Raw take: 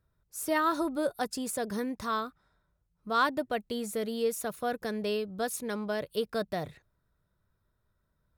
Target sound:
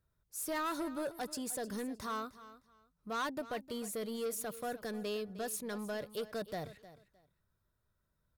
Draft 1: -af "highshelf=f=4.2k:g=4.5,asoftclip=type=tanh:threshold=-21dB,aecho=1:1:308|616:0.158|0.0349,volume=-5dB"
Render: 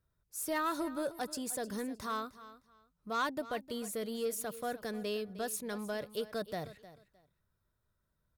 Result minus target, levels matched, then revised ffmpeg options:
soft clip: distortion -7 dB
-af "highshelf=f=4.2k:g=4.5,asoftclip=type=tanh:threshold=-27dB,aecho=1:1:308|616:0.158|0.0349,volume=-5dB"

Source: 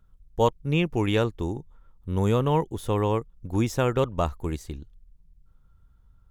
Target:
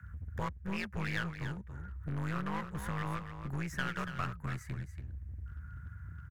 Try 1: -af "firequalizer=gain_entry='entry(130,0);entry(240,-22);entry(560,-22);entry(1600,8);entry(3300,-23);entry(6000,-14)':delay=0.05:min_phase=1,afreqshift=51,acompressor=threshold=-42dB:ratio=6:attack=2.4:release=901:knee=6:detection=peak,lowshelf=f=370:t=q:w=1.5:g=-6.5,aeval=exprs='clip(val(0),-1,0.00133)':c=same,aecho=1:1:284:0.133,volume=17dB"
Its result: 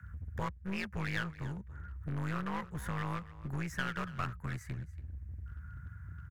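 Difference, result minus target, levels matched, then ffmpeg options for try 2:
echo-to-direct -8 dB
-af "firequalizer=gain_entry='entry(130,0);entry(240,-22);entry(560,-22);entry(1600,8);entry(3300,-23);entry(6000,-14)':delay=0.05:min_phase=1,afreqshift=51,acompressor=threshold=-42dB:ratio=6:attack=2.4:release=901:knee=6:detection=peak,lowshelf=f=370:t=q:w=1.5:g=-6.5,aeval=exprs='clip(val(0),-1,0.00133)':c=same,aecho=1:1:284:0.335,volume=17dB"

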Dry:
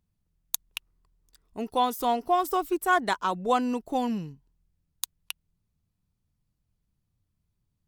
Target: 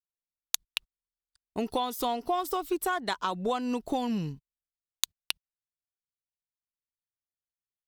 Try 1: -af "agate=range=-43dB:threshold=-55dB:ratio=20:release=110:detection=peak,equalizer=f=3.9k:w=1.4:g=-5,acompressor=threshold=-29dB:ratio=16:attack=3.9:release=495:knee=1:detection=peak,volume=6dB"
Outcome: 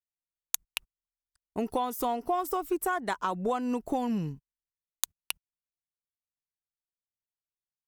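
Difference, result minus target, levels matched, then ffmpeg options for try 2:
4000 Hz band -6.5 dB
-af "agate=range=-43dB:threshold=-55dB:ratio=20:release=110:detection=peak,equalizer=f=3.9k:w=1.4:g=6,acompressor=threshold=-29dB:ratio=16:attack=3.9:release=495:knee=1:detection=peak,volume=6dB"

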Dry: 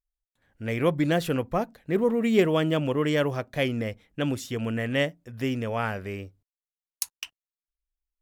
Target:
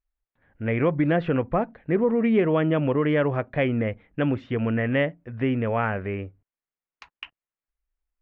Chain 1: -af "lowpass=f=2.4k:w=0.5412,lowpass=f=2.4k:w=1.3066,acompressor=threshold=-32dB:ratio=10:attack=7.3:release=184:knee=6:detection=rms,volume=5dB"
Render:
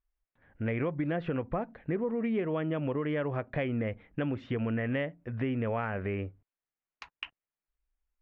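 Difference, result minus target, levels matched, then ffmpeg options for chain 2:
compressor: peak gain reduction +11 dB
-af "lowpass=f=2.4k:w=0.5412,lowpass=f=2.4k:w=1.3066,acompressor=threshold=-20dB:ratio=10:attack=7.3:release=184:knee=6:detection=rms,volume=5dB"

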